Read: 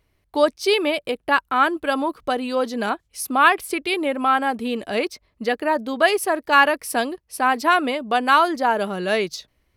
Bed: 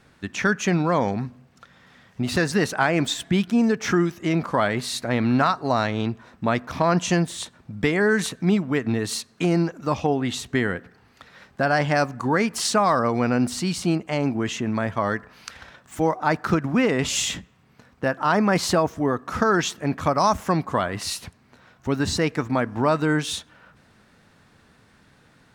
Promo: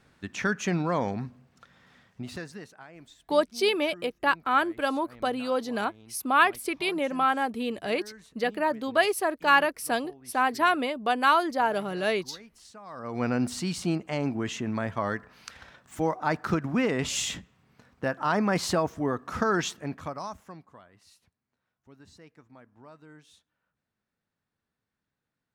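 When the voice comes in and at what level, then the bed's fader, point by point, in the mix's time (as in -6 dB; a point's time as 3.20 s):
2.95 s, -5.5 dB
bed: 1.98 s -6 dB
2.85 s -28 dB
12.82 s -28 dB
13.23 s -5.5 dB
19.68 s -5.5 dB
20.84 s -30 dB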